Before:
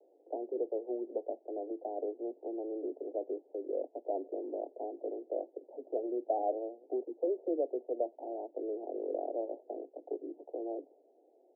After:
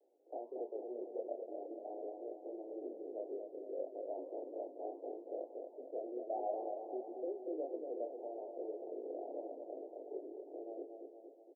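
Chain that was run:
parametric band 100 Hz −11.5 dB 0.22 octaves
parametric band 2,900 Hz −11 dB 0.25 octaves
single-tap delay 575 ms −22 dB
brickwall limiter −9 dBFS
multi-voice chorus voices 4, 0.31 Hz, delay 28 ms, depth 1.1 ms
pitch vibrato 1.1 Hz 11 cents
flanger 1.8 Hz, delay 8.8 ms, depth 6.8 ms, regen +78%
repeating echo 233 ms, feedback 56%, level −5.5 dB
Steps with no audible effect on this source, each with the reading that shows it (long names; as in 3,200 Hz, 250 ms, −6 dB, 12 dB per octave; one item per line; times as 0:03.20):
parametric band 100 Hz: nothing at its input below 230 Hz
parametric band 2,900 Hz: nothing at its input above 910 Hz
brickwall limiter −9 dBFS: peak of its input −19.0 dBFS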